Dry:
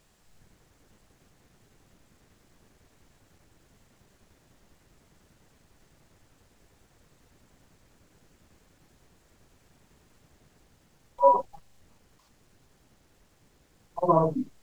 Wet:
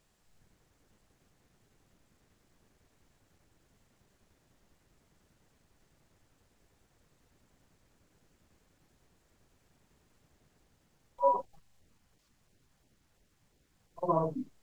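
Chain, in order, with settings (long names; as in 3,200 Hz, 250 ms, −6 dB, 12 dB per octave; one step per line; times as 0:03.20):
0:11.45–0:14.03: auto-filter notch saw down 2.9 Hz 250–1,500 Hz
level −7.5 dB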